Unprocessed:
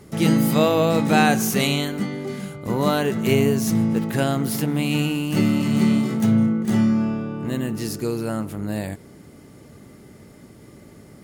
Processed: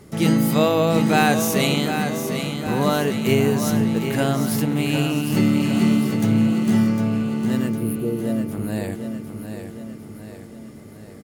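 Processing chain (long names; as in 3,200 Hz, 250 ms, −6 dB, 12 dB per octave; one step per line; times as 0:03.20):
time-frequency box erased 0:07.69–0:08.52, 710–8,900 Hz
repeating echo 755 ms, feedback 54%, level −8 dB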